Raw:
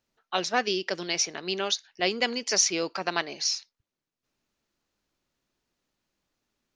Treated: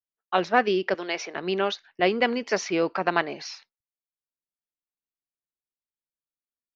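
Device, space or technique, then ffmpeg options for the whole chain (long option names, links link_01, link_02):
hearing-loss simulation: -filter_complex "[0:a]asettb=1/sr,asplit=3[link_01][link_02][link_03];[link_01]atrim=end=0.944[link_04];[link_02]atrim=start=0.94:end=1.36,asetpts=PTS-STARTPTS,afade=type=in:duration=0.004:curve=qsin,afade=type=out:start_time=0.416:duration=0.004:curve=qsin,highpass=400[link_05];[link_03]atrim=start=1.356[link_06];[link_04][link_05]acrossfade=duration=0.004:curve1=hsin:curve2=qsin[link_07];[link_07][link_06]acrossfade=duration=0.004:curve1=qsin:curve2=hsin,lowpass=2000,agate=range=-33dB:threshold=-53dB:ratio=3:detection=peak,volume=6dB"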